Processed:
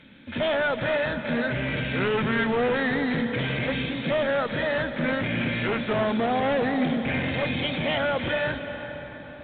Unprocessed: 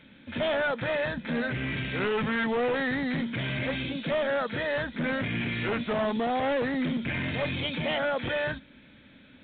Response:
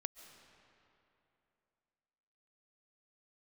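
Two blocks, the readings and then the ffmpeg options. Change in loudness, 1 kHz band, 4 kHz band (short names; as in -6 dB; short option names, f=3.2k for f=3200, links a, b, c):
+3.5 dB, +3.5 dB, +3.0 dB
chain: -filter_complex "[1:a]atrim=start_sample=2205,asetrate=26460,aresample=44100[a];[0:a][a]afir=irnorm=-1:irlink=0,volume=3.5dB"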